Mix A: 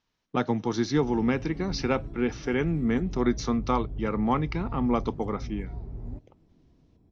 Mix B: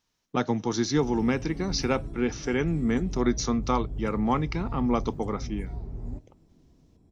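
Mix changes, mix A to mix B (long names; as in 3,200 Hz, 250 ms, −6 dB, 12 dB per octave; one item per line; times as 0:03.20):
background: send +7.5 dB
master: remove low-pass filter 4,200 Hz 12 dB per octave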